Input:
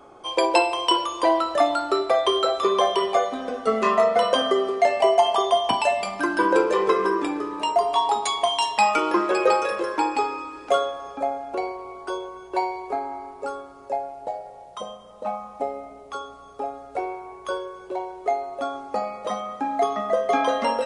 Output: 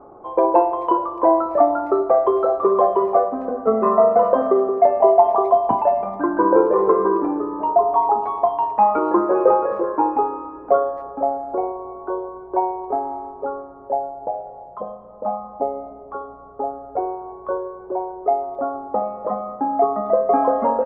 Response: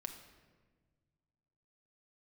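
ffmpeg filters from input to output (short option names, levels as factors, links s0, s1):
-filter_complex "[0:a]lowpass=f=1100:w=0.5412,lowpass=f=1100:w=1.3066,asplit=2[s0][s1];[s1]adelay=260,highpass=300,lowpass=3400,asoftclip=type=hard:threshold=0.168,volume=0.0355[s2];[s0][s2]amix=inputs=2:normalize=0,volume=1.78"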